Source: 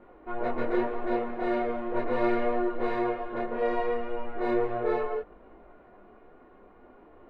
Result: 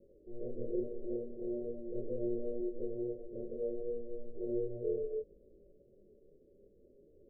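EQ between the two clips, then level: rippled Chebyshev low-pass 580 Hz, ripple 6 dB; bell 250 Hz -4.5 dB 1 oct; -2.5 dB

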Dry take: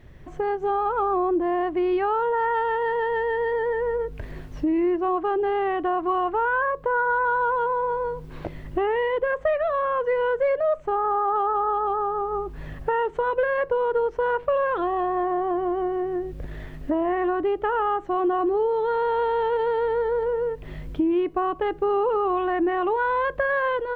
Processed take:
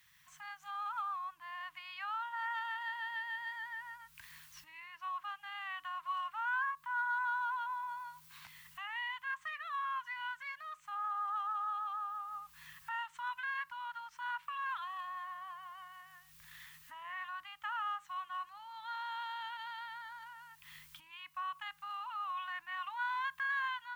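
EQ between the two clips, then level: Chebyshev band-stop 180–1000 Hz, order 3; differentiator; +5.0 dB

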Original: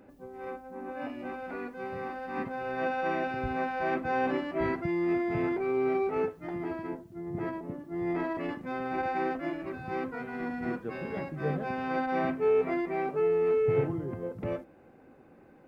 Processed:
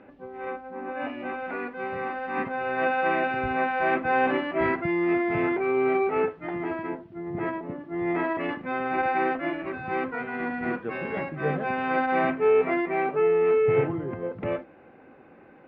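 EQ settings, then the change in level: LPF 3000 Hz 24 dB/oct; tilt +2 dB/oct; +7.0 dB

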